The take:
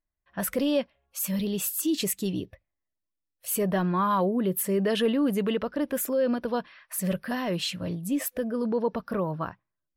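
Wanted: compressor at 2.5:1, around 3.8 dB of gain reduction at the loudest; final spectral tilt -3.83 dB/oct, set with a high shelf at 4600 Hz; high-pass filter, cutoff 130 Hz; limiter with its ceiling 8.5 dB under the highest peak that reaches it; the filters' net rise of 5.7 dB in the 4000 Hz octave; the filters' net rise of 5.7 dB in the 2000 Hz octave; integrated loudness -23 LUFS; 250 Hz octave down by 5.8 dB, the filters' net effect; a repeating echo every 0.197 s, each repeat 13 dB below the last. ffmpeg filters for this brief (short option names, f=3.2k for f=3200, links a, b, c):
-af "highpass=130,equalizer=f=250:t=o:g=-7,equalizer=f=2k:t=o:g=6.5,equalizer=f=4k:t=o:g=7,highshelf=f=4.6k:g=-4.5,acompressor=threshold=-27dB:ratio=2.5,alimiter=level_in=1dB:limit=-24dB:level=0:latency=1,volume=-1dB,aecho=1:1:197|394|591:0.224|0.0493|0.0108,volume=11dB"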